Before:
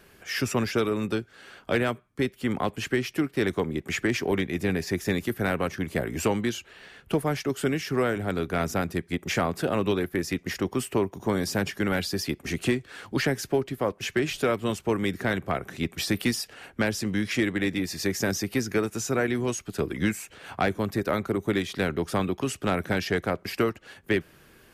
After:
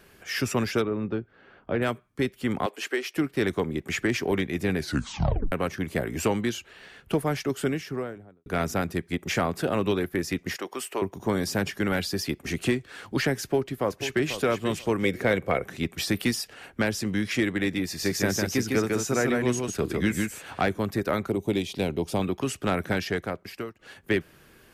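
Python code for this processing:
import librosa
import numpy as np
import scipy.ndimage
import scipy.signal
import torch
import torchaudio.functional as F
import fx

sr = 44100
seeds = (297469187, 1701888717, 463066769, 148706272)

y = fx.spacing_loss(x, sr, db_at_10k=41, at=(0.81, 1.81), fade=0.02)
y = fx.highpass(y, sr, hz=350.0, slope=24, at=(2.66, 3.17))
y = fx.studio_fade_out(y, sr, start_s=7.51, length_s=0.95)
y = fx.highpass(y, sr, hz=510.0, slope=12, at=(10.56, 11.02))
y = fx.echo_throw(y, sr, start_s=13.41, length_s=0.98, ms=490, feedback_pct=20, wet_db=-10.5)
y = fx.small_body(y, sr, hz=(500.0, 2200.0), ring_ms=30, db=11, at=(15.03, 15.66))
y = fx.echo_single(y, sr, ms=154, db=-3.0, at=(17.87, 20.61))
y = fx.band_shelf(y, sr, hz=1500.0, db=-12.0, octaves=1.0, at=(21.3, 22.22))
y = fx.edit(y, sr, fx.tape_stop(start_s=4.77, length_s=0.75),
    fx.fade_out_to(start_s=22.91, length_s=0.88, floor_db=-17.0), tone=tone)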